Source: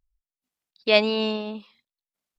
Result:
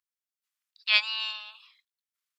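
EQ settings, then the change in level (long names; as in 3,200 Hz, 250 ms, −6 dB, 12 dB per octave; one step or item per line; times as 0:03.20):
Butterworth high-pass 1,100 Hz 36 dB per octave
0.0 dB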